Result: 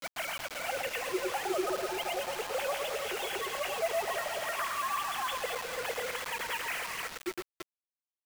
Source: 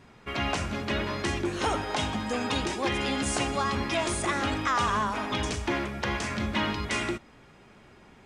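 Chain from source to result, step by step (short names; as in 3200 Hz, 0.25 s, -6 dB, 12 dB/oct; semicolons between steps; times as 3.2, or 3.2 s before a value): sine-wave speech; vibrato 0.4 Hz 67 cents; Chebyshev high-pass 330 Hz, order 5; grains 0.1 s, grains 20/s, spray 0.317 s; echo with dull and thin repeats by turns 0.11 s, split 1700 Hz, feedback 73%, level -5 dB; in parallel at +0.5 dB: limiter -22.5 dBFS, peak gain reduction 9 dB; on the sum: dynamic EQ 1100 Hz, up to -4 dB, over -32 dBFS, Q 1.8; on a send at -18 dB: reverb RT60 1.1 s, pre-delay 3 ms; on the sum: bit-crush 5-bit; gain -9 dB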